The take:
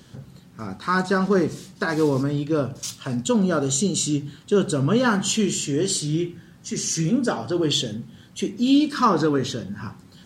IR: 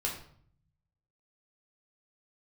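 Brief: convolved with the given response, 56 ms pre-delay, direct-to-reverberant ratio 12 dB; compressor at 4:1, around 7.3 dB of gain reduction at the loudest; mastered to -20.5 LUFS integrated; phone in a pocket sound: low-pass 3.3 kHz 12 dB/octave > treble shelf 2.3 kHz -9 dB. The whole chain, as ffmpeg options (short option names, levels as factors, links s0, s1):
-filter_complex "[0:a]acompressor=threshold=0.0794:ratio=4,asplit=2[s0][s1];[1:a]atrim=start_sample=2205,adelay=56[s2];[s1][s2]afir=irnorm=-1:irlink=0,volume=0.158[s3];[s0][s3]amix=inputs=2:normalize=0,lowpass=3300,highshelf=f=2300:g=-9,volume=2.37"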